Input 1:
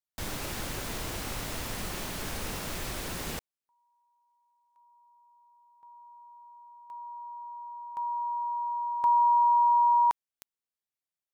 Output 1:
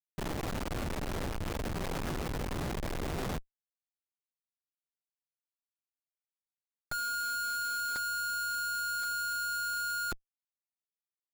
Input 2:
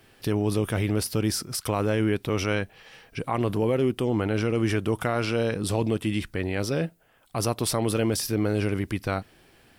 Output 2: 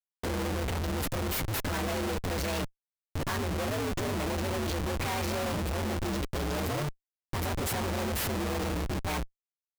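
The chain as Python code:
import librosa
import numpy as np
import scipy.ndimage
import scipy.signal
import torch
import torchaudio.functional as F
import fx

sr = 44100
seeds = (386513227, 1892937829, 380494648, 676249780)

y = fx.partial_stretch(x, sr, pct=130)
y = fx.schmitt(y, sr, flips_db=-39.5)
y = y * 10.0 ** (-2.5 / 20.0)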